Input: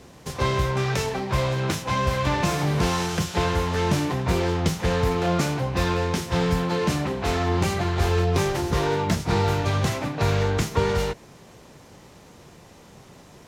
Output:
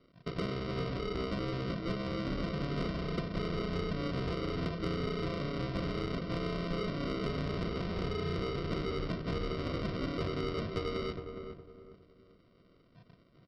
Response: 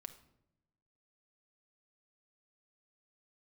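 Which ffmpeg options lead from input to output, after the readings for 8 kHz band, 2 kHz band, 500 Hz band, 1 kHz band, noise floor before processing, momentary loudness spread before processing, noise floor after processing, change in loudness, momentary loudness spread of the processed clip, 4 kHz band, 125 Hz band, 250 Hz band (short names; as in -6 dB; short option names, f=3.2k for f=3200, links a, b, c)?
under -25 dB, -13.5 dB, -11.0 dB, -16.0 dB, -49 dBFS, 3 LU, -64 dBFS, -12.0 dB, 2 LU, -11.5 dB, -13.0 dB, -9.0 dB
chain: -filter_complex "[0:a]bandreject=f=50:t=h:w=6,bandreject=f=100:t=h:w=6,bandreject=f=150:t=h:w=6,bandreject=f=200:t=h:w=6,bandreject=f=250:t=h:w=6,bandreject=f=300:t=h:w=6,bandreject=f=350:t=h:w=6,bandreject=f=400:t=h:w=6,afwtdn=0.0251,highpass=140,highshelf=f=4.1k:g=11,acompressor=threshold=-31dB:ratio=16,aresample=11025,acrusher=samples=13:mix=1:aa=0.000001,aresample=44100,asoftclip=type=tanh:threshold=-24.5dB,asplit=2[a][b];[b]adelay=412,lowpass=f=1.2k:p=1,volume=-6.5dB,asplit=2[c][d];[d]adelay=412,lowpass=f=1.2k:p=1,volume=0.33,asplit=2[e][f];[f]adelay=412,lowpass=f=1.2k:p=1,volume=0.33,asplit=2[g][h];[h]adelay=412,lowpass=f=1.2k:p=1,volume=0.33[i];[a][c][e][g][i]amix=inputs=5:normalize=0"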